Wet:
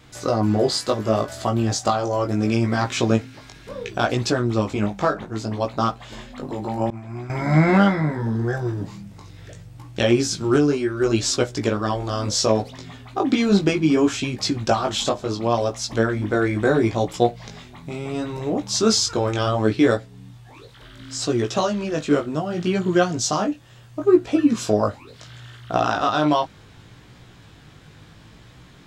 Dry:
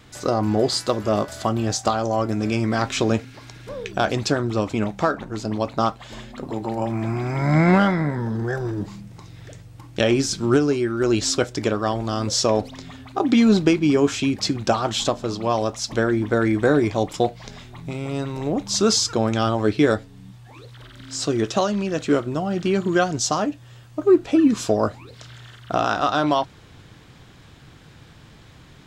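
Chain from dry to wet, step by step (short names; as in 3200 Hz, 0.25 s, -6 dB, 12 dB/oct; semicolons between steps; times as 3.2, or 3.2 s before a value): chorus 0.7 Hz, delay 16.5 ms, depth 3.7 ms; 6.9–7.3 expander -17 dBFS; gain +3 dB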